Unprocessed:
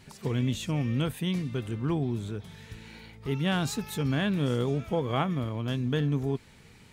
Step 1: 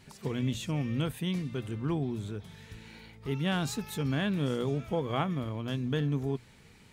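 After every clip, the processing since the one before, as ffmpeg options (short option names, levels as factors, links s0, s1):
-af "bandreject=f=60:t=h:w=6,bandreject=f=120:t=h:w=6,volume=0.75"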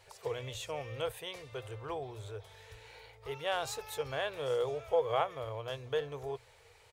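-af "firequalizer=gain_entry='entry(110,0);entry(190,-29);entry(470,11);entry(1500,4)':delay=0.05:min_phase=1,volume=0.473"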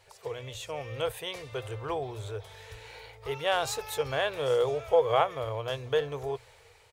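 -af "dynaudnorm=f=360:g=5:m=2.11"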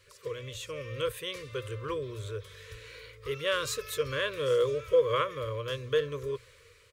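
-af "asuperstop=centerf=770:order=12:qfactor=1.9"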